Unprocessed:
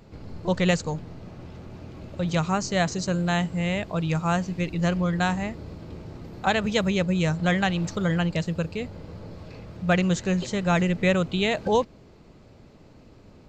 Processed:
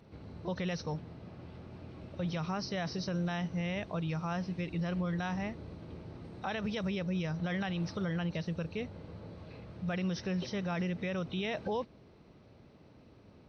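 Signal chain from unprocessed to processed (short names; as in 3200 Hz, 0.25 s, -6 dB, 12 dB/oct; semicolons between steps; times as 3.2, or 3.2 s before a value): nonlinear frequency compression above 3600 Hz 1.5:1; limiter -20 dBFS, peak gain reduction 10.5 dB; HPF 58 Hz; gain -6.5 dB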